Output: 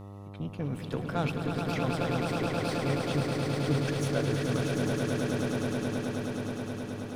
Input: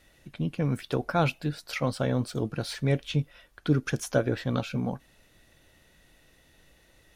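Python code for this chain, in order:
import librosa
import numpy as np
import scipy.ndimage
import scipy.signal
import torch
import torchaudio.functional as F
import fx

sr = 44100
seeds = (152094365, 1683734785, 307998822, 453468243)

y = fx.cheby_harmonics(x, sr, harmonics=(8,), levels_db=(-26,), full_scale_db=-11.5)
y = fx.echo_swell(y, sr, ms=106, loudest=8, wet_db=-5.5)
y = fx.dmg_buzz(y, sr, base_hz=100.0, harmonics=13, level_db=-37.0, tilt_db=-6, odd_only=False)
y = F.gain(torch.from_numpy(y), -7.0).numpy()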